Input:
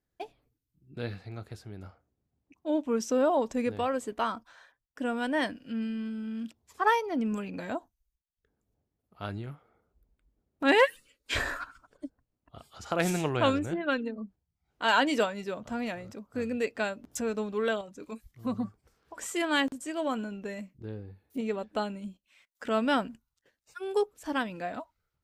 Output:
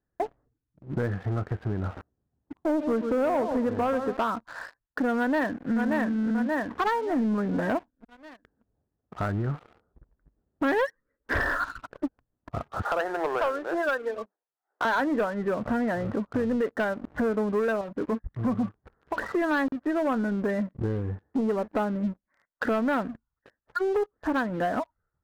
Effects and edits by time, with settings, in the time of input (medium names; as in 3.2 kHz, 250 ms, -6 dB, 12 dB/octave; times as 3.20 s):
1.83–4.17 s: bit-crushed delay 133 ms, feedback 35%, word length 8-bit, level -10 dB
5.18–5.72 s: echo throw 580 ms, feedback 40%, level -2 dB
12.82–14.85 s: high-pass 440 Hz 24 dB/octave
whole clip: steep low-pass 1.9 kHz 96 dB/octave; compression 4:1, threshold -43 dBFS; waveshaping leveller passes 3; trim +7.5 dB